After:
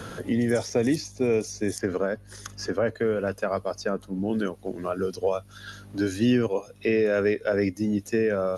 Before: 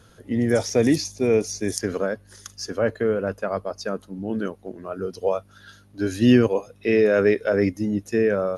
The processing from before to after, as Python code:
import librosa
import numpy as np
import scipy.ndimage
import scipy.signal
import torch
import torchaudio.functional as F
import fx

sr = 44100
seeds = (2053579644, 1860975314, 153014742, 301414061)

y = fx.band_squash(x, sr, depth_pct=70)
y = y * librosa.db_to_amplitude(-3.5)